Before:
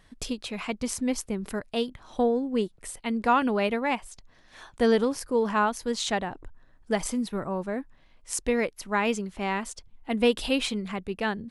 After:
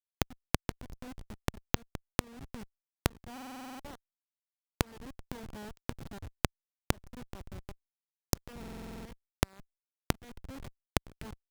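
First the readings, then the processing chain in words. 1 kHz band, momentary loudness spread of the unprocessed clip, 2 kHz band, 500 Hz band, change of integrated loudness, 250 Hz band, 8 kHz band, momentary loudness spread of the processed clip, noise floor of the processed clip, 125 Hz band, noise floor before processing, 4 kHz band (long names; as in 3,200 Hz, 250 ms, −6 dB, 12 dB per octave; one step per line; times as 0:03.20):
−14.5 dB, 10 LU, −11.5 dB, −17.0 dB, −12.0 dB, −14.0 dB, −8.5 dB, 12 LU, below −85 dBFS, +1.5 dB, −58 dBFS, −9.5 dB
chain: spectral envelope flattened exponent 0.3
in parallel at 0 dB: brickwall limiter −14.5 dBFS, peak gain reduction 8.5 dB
on the sum: comparator with hysteresis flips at −16.5 dBFS
gate with flip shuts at −27 dBFS, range −38 dB
parametric band 76 Hz +4 dB 2.3 octaves
downward compressor 3 to 1, threshold −45 dBFS, peak gain reduction 12 dB
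buffer that repeats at 0:03.33/0:08.59, samples 2,048, times 9
level +17 dB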